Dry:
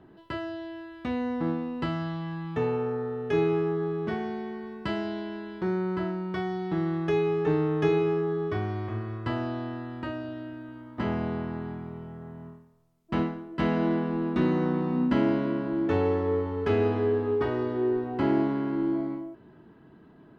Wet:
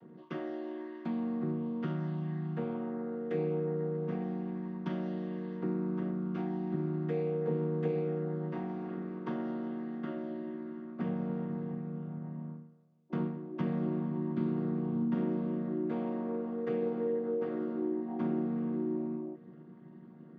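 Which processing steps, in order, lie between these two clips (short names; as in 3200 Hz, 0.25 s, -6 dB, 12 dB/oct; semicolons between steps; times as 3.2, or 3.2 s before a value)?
chord vocoder minor triad, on D#3; compressor 2:1, threshold -39 dBFS, peak gain reduction 11 dB; gain +2.5 dB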